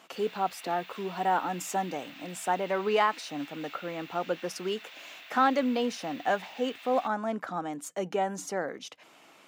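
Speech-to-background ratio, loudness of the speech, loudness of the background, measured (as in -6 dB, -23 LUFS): 15.5 dB, -31.0 LUFS, -46.5 LUFS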